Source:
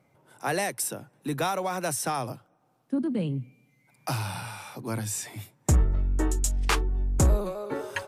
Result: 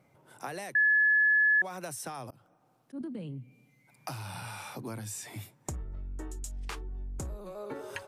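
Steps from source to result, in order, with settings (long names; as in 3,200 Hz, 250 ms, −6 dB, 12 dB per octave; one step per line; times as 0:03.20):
0:02.30–0:03.01: volume swells 162 ms
downward compressor 12 to 1, threshold −36 dBFS, peak gain reduction 18.5 dB
0:00.75–0:01.62: beep over 1,710 Hz −20.5 dBFS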